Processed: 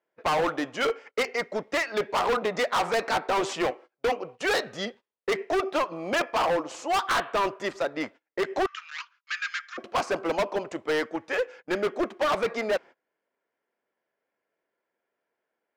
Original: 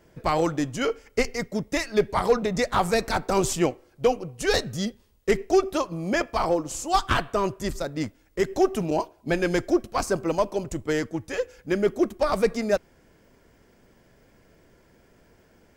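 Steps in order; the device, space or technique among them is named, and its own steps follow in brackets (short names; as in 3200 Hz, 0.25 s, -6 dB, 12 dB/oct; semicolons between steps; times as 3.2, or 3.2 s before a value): walkie-talkie (BPF 540–2700 Hz; hard clip -28.5 dBFS, distortion -6 dB; gate -51 dBFS, range -26 dB); 8.66–9.78 Chebyshev band-pass 1200–7100 Hz, order 5; gain +7 dB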